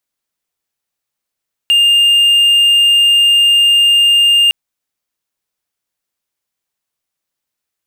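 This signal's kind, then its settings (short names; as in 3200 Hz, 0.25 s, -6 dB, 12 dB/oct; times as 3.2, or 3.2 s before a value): tone triangle 2810 Hz -4.5 dBFS 2.81 s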